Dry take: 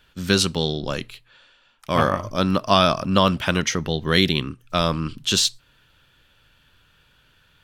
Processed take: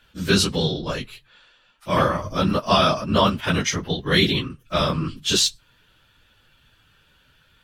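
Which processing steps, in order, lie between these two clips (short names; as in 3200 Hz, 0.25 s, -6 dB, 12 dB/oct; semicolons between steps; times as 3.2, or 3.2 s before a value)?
phase scrambler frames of 50 ms; 2.81–4.5 gate -27 dBFS, range -8 dB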